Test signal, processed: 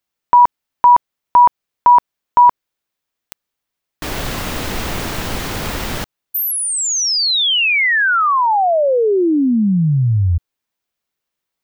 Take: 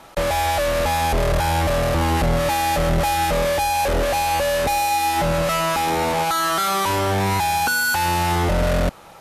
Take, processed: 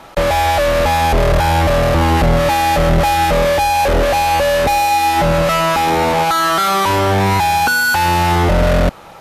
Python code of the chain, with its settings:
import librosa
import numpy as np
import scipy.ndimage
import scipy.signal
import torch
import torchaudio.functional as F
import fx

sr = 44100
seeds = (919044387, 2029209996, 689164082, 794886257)

y = fx.peak_eq(x, sr, hz=10000.0, db=-6.0, octaves=1.5)
y = F.gain(torch.from_numpy(y), 6.5).numpy()